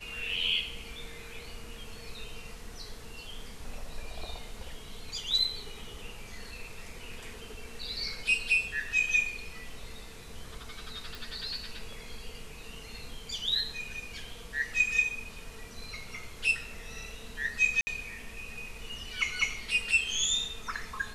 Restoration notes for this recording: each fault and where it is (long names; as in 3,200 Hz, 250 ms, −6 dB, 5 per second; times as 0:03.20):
0:11.15: click
0:17.81–0:17.87: drop-out 60 ms